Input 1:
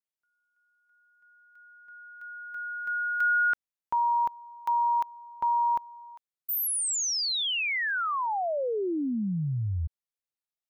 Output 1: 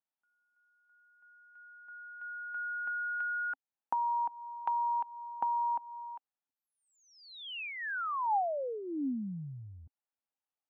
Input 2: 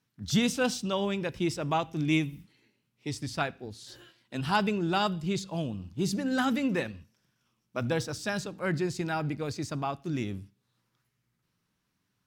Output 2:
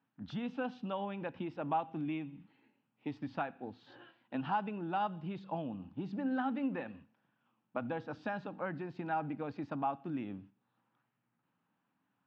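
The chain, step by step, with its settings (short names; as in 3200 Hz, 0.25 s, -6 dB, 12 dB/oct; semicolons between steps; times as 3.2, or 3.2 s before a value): compressor 6:1, threshold -34 dBFS; speaker cabinet 200–2600 Hz, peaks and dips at 270 Hz +5 dB, 390 Hz -7 dB, 820 Hz +8 dB, 2100 Hz -7 dB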